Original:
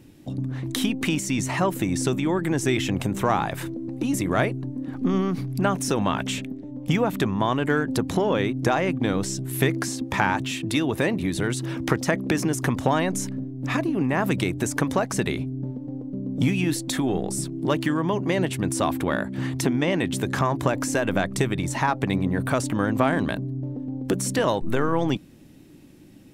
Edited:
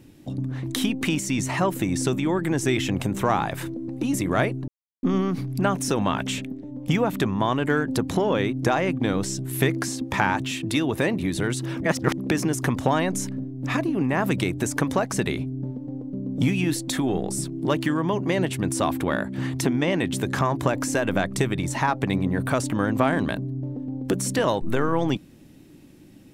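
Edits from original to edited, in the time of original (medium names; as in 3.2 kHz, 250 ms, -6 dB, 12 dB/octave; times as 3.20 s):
4.68–5.03 s: mute
11.82–12.18 s: reverse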